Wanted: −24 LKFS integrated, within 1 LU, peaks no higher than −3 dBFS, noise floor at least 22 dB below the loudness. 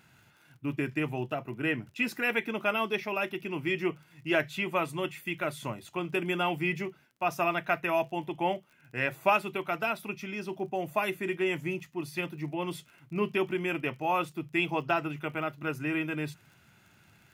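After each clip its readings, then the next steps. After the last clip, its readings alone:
crackle rate 28 per second; integrated loudness −31.5 LKFS; sample peak −12.0 dBFS; target loudness −24.0 LKFS
→ click removal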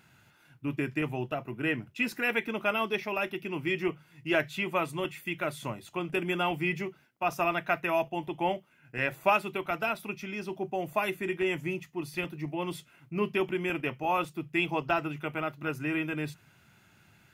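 crackle rate 0.12 per second; integrated loudness −31.5 LKFS; sample peak −12.0 dBFS; target loudness −24.0 LKFS
→ level +7.5 dB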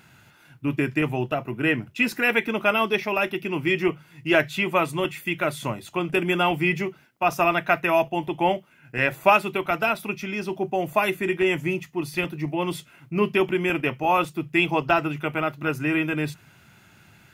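integrated loudness −24.0 LKFS; sample peak −4.5 dBFS; background noise floor −55 dBFS

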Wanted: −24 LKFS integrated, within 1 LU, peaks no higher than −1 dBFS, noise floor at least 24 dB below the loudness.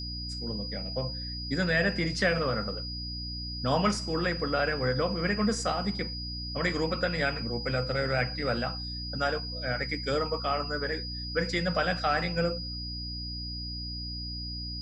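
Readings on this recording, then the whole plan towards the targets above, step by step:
mains hum 60 Hz; hum harmonics up to 300 Hz; level of the hum −36 dBFS; interfering tone 4,900 Hz; level of the tone −37 dBFS; integrated loudness −30.0 LKFS; sample peak −13.0 dBFS; target loudness −24.0 LKFS
→ hum removal 60 Hz, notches 5
notch filter 4,900 Hz, Q 30
level +6 dB

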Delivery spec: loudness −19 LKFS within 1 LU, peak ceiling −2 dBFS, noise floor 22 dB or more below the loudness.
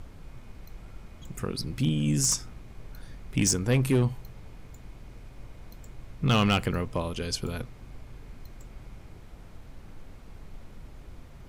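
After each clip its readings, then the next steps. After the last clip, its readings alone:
share of clipped samples 0.3%; peaks flattened at −17.0 dBFS; background noise floor −48 dBFS; target noise floor −49 dBFS; integrated loudness −27.0 LKFS; sample peak −17.0 dBFS; target loudness −19.0 LKFS
→ clipped peaks rebuilt −17 dBFS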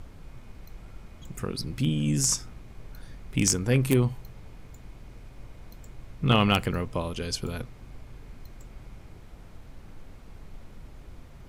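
share of clipped samples 0.0%; background noise floor −48 dBFS; target noise floor −49 dBFS
→ noise reduction from a noise print 6 dB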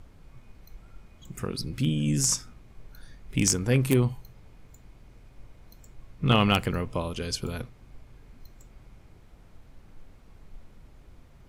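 background noise floor −53 dBFS; integrated loudness −26.5 LKFS; sample peak −8.0 dBFS; target loudness −19.0 LKFS
→ level +7.5 dB
brickwall limiter −2 dBFS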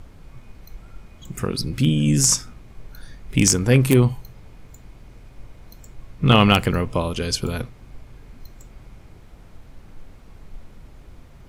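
integrated loudness −19.0 LKFS; sample peak −2.0 dBFS; background noise floor −46 dBFS

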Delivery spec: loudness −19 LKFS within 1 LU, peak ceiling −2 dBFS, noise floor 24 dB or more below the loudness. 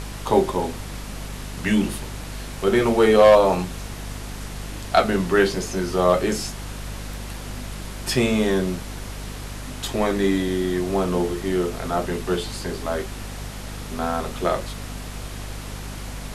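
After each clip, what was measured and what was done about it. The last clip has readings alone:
mains hum 50 Hz; hum harmonics up to 250 Hz; level of the hum −32 dBFS; background noise floor −34 dBFS; target noise floor −46 dBFS; integrated loudness −22.0 LKFS; sample peak −2.5 dBFS; target loudness −19.0 LKFS
→ hum removal 50 Hz, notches 5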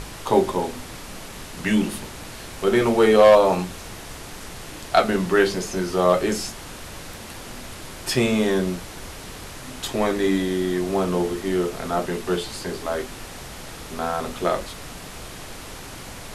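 mains hum none found; background noise floor −38 dBFS; target noise floor −46 dBFS
→ noise reduction from a noise print 8 dB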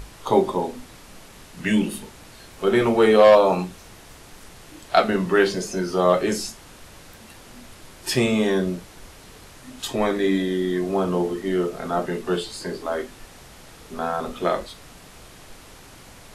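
background noise floor −46 dBFS; integrated loudness −22.0 LKFS; sample peak −2.5 dBFS; target loudness −19.0 LKFS
→ level +3 dB
brickwall limiter −2 dBFS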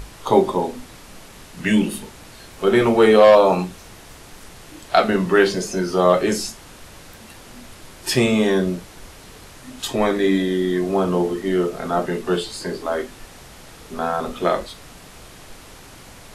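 integrated loudness −19.0 LKFS; sample peak −2.0 dBFS; background noise floor −43 dBFS

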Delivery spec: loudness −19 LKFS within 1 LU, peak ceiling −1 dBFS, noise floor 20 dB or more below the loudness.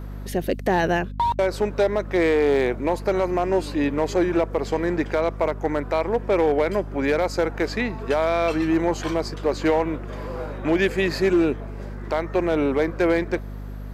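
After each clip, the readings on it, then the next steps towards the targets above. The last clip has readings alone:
share of clipped samples 1.1%; peaks flattened at −13.0 dBFS; mains hum 50 Hz; hum harmonics up to 250 Hz; level of the hum −31 dBFS; integrated loudness −23.0 LKFS; sample peak −13.0 dBFS; target loudness −19.0 LKFS
→ clipped peaks rebuilt −13 dBFS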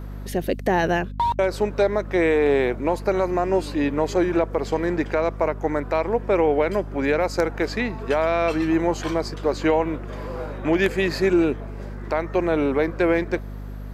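share of clipped samples 0.0%; mains hum 50 Hz; hum harmonics up to 250 Hz; level of the hum −31 dBFS
→ hum removal 50 Hz, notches 5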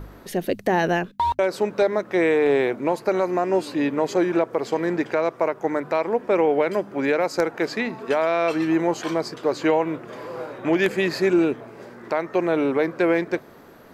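mains hum none found; integrated loudness −22.5 LKFS; sample peak −5.5 dBFS; target loudness −19.0 LKFS
→ level +3.5 dB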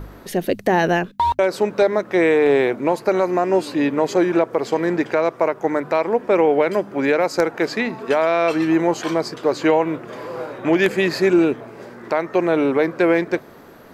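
integrated loudness −19.0 LKFS; sample peak −2.0 dBFS; background noise floor −43 dBFS

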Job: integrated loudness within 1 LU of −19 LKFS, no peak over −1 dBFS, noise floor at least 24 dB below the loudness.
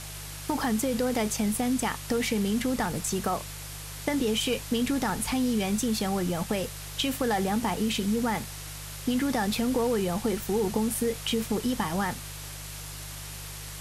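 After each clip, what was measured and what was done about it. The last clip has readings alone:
mains hum 50 Hz; hum harmonics up to 150 Hz; level of the hum −40 dBFS; background noise floor −40 dBFS; target noise floor −53 dBFS; integrated loudness −28.5 LKFS; sample peak −13.5 dBFS; target loudness −19.0 LKFS
→ hum removal 50 Hz, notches 3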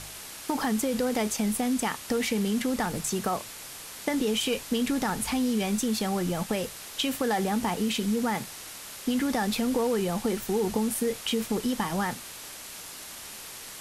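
mains hum none found; background noise floor −42 dBFS; target noise floor −52 dBFS
→ noise reduction from a noise print 10 dB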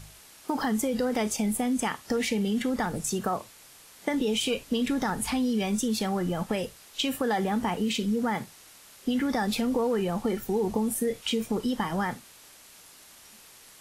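background noise floor −52 dBFS; target noise floor −53 dBFS
→ noise reduction from a noise print 6 dB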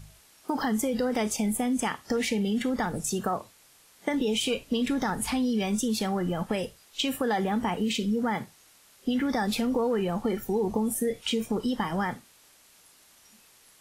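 background noise floor −58 dBFS; integrated loudness −28.5 LKFS; sample peak −14.0 dBFS; target loudness −19.0 LKFS
→ level +9.5 dB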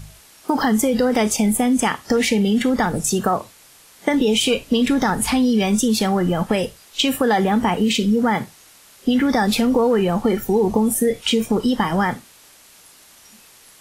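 integrated loudness −19.0 LKFS; sample peak −4.5 dBFS; background noise floor −49 dBFS

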